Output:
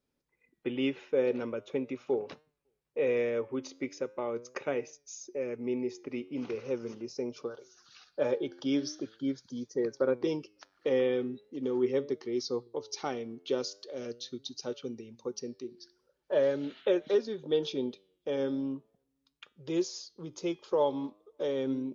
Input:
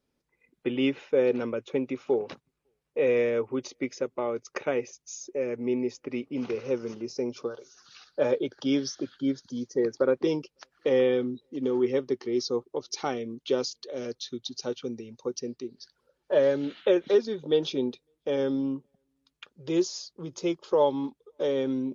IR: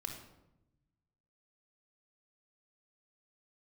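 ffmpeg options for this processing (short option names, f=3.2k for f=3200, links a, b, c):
-af "flanger=delay=6.4:depth=5.1:regen=90:speed=0.41:shape=triangular"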